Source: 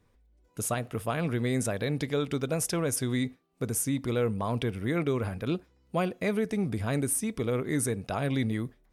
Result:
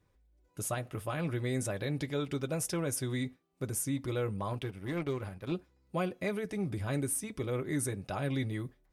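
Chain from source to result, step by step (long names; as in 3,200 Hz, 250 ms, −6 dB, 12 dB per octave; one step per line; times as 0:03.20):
notch comb filter 230 Hz
0:04.53–0:05.52: power curve on the samples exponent 1.4
level −3.5 dB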